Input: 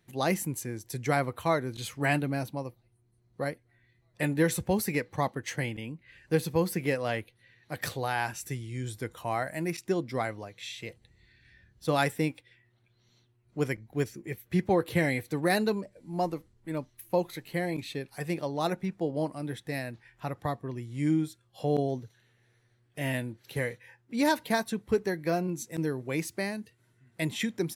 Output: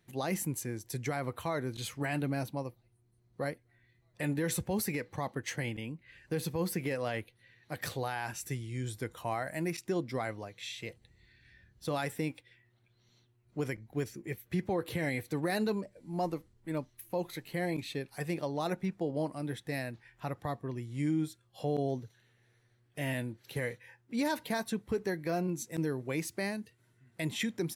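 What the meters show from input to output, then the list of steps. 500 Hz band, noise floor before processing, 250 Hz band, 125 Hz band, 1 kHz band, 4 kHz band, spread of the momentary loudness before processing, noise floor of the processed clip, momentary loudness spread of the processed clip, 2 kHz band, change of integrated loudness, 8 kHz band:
−5.0 dB, −68 dBFS, −4.0 dB, −3.5 dB, −6.0 dB, −3.5 dB, 11 LU, −70 dBFS, 9 LU, −5.5 dB, −4.5 dB, −2.0 dB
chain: brickwall limiter −21.5 dBFS, peak gain reduction 9.5 dB
level −1.5 dB

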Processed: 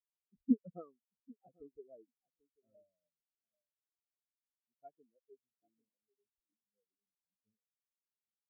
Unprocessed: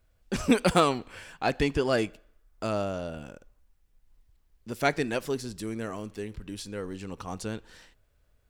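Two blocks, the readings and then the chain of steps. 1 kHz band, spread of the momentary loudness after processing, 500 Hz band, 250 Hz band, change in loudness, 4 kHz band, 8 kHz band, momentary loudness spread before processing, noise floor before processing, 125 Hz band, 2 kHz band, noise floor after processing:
−33.0 dB, 21 LU, −28.0 dB, −11.0 dB, −6.5 dB, below −40 dB, below −40 dB, 15 LU, −67 dBFS, −28.0 dB, below −40 dB, below −85 dBFS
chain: high-shelf EQ 2,100 Hz −5.5 dB
on a send: feedback echo with a low-pass in the loop 790 ms, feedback 31%, low-pass 1,800 Hz, level −6.5 dB
on the sum: every bin expanded away from the loudest bin 4 to 1
level −9 dB

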